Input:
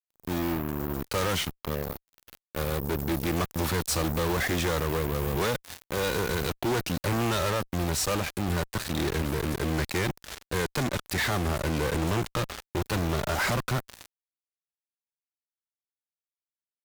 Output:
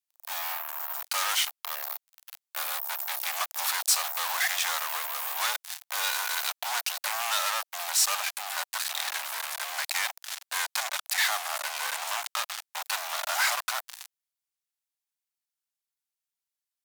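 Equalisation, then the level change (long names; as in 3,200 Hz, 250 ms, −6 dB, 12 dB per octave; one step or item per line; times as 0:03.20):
Butterworth high-pass 690 Hz 48 dB per octave
parametric band 14,000 Hz +7 dB 2.7 octaves
0.0 dB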